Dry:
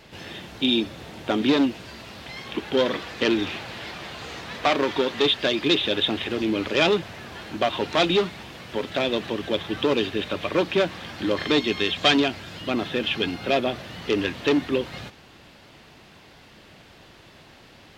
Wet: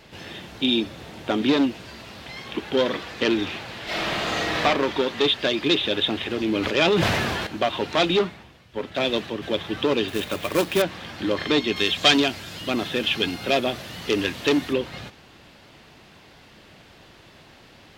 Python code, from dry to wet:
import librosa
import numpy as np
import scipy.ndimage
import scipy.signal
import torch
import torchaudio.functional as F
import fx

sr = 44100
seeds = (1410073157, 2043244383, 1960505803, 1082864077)

y = fx.reverb_throw(x, sr, start_s=3.84, length_s=0.78, rt60_s=1.1, drr_db=-11.0)
y = fx.sustainer(y, sr, db_per_s=21.0, at=(6.48, 7.47))
y = fx.band_widen(y, sr, depth_pct=100, at=(8.19, 9.42))
y = fx.quant_companded(y, sr, bits=4, at=(10.08, 10.82))
y = fx.high_shelf(y, sr, hz=5400.0, db=11.5, at=(11.76, 14.73))